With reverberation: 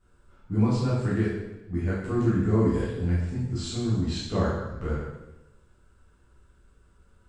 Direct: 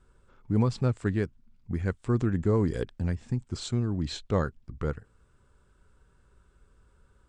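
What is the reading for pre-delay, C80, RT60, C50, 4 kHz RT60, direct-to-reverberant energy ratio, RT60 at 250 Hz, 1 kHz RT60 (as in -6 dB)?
5 ms, 3.0 dB, 1.0 s, 0.0 dB, 0.90 s, -9.5 dB, 1.0 s, 0.95 s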